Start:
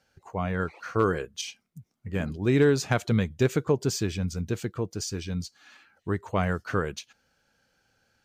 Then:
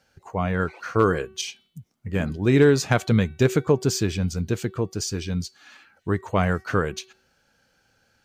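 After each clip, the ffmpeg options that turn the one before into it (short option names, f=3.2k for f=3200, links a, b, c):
-af "bandreject=f=378.8:t=h:w=4,bandreject=f=757.6:t=h:w=4,bandreject=f=1.1364k:t=h:w=4,bandreject=f=1.5152k:t=h:w=4,bandreject=f=1.894k:t=h:w=4,bandreject=f=2.2728k:t=h:w=4,bandreject=f=2.6516k:t=h:w=4,bandreject=f=3.0304k:t=h:w=4,bandreject=f=3.4092k:t=h:w=4,bandreject=f=3.788k:t=h:w=4,bandreject=f=4.1668k:t=h:w=4,bandreject=f=4.5456k:t=h:w=4,volume=4.5dB"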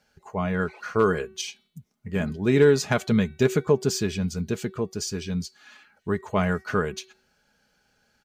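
-af "aecho=1:1:4.8:0.43,volume=-2.5dB"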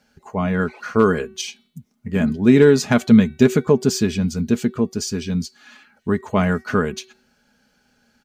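-af "equalizer=f=240:t=o:w=0.36:g=10.5,volume=4dB"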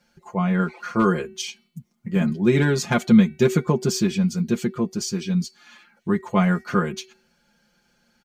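-af "aecho=1:1:5.7:0.91,volume=-4.5dB"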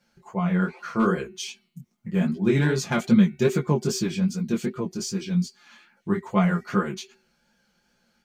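-af "flanger=delay=15:depth=7.5:speed=2.5"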